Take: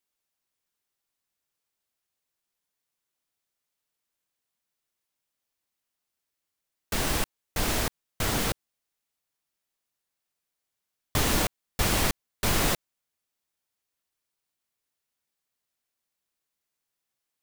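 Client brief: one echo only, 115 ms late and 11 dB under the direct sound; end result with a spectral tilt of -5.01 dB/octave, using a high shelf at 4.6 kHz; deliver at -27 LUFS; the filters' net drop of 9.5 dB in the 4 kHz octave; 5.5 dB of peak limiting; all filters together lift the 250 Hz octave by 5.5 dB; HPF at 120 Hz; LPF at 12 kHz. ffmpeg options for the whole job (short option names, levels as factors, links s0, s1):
-af "highpass=120,lowpass=12000,equalizer=f=250:t=o:g=7.5,equalizer=f=4000:t=o:g=-8,highshelf=f=4600:g=-9,alimiter=limit=0.112:level=0:latency=1,aecho=1:1:115:0.282,volume=1.68"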